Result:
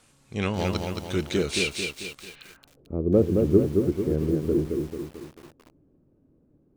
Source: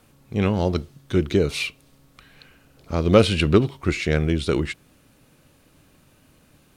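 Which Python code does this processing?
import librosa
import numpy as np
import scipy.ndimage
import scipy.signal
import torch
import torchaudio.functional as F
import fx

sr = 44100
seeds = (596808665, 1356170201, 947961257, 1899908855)

y = fx.filter_sweep_lowpass(x, sr, from_hz=8300.0, to_hz=370.0, start_s=2.23, end_s=2.83, q=1.9)
y = fx.tilt_shelf(y, sr, db=-3.5, hz=840.0)
y = fx.echo_crushed(y, sr, ms=221, feedback_pct=55, bits=7, wet_db=-4.0)
y = F.gain(torch.from_numpy(y), -4.0).numpy()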